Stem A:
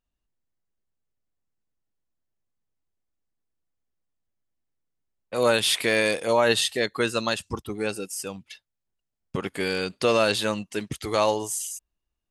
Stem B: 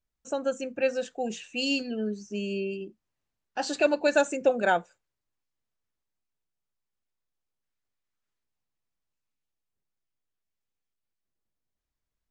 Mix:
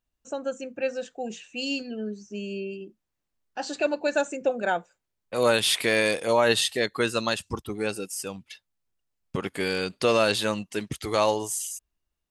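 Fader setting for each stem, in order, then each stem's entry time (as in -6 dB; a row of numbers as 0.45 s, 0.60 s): -0.5 dB, -2.0 dB; 0.00 s, 0.00 s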